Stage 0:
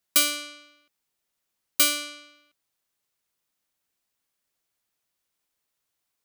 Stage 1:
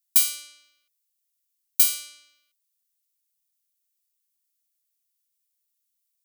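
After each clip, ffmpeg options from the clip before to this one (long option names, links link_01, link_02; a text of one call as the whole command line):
ffmpeg -i in.wav -af "aderivative" out.wav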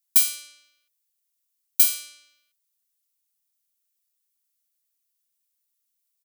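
ffmpeg -i in.wav -af "aecho=1:1:4.6:0.37" out.wav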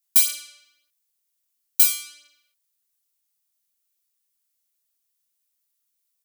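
ffmpeg -i in.wav -af "flanger=delay=19.5:depth=4.3:speed=0.51,volume=5dB" out.wav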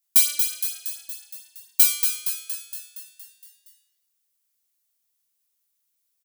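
ffmpeg -i in.wav -filter_complex "[0:a]asplit=9[link_01][link_02][link_03][link_04][link_05][link_06][link_07][link_08][link_09];[link_02]adelay=233,afreqshift=66,volume=-6.5dB[link_10];[link_03]adelay=466,afreqshift=132,volume=-10.9dB[link_11];[link_04]adelay=699,afreqshift=198,volume=-15.4dB[link_12];[link_05]adelay=932,afreqshift=264,volume=-19.8dB[link_13];[link_06]adelay=1165,afreqshift=330,volume=-24.2dB[link_14];[link_07]adelay=1398,afreqshift=396,volume=-28.7dB[link_15];[link_08]adelay=1631,afreqshift=462,volume=-33.1dB[link_16];[link_09]adelay=1864,afreqshift=528,volume=-37.6dB[link_17];[link_01][link_10][link_11][link_12][link_13][link_14][link_15][link_16][link_17]amix=inputs=9:normalize=0" out.wav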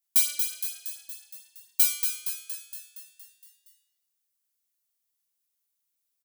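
ffmpeg -i in.wav -filter_complex "[0:a]asplit=2[link_01][link_02];[link_02]adelay=15,volume=-13dB[link_03];[link_01][link_03]amix=inputs=2:normalize=0,volume=-5.5dB" out.wav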